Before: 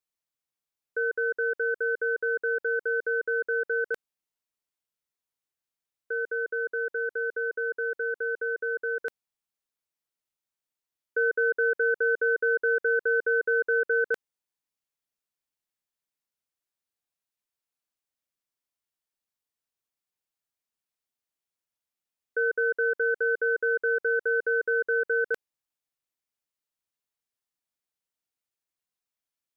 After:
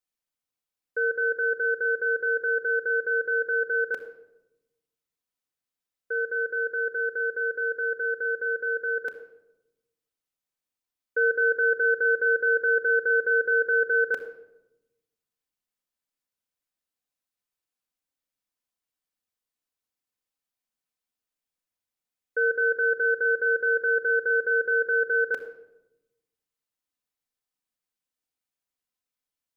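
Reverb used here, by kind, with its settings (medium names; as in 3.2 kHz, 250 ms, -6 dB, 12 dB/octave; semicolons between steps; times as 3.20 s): simulated room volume 3700 m³, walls furnished, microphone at 2 m; trim -1.5 dB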